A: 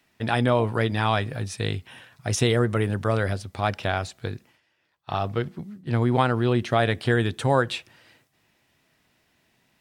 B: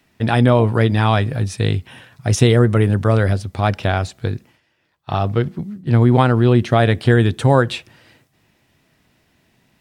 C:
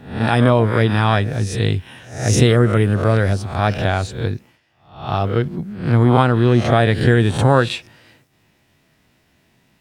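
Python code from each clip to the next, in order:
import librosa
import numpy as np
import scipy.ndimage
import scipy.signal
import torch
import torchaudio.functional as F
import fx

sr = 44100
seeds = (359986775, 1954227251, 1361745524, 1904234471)

y1 = fx.low_shelf(x, sr, hz=390.0, db=7.0)
y1 = y1 * 10.0 ** (4.0 / 20.0)
y2 = fx.spec_swells(y1, sr, rise_s=0.5)
y2 = y2 * 10.0 ** (-1.0 / 20.0)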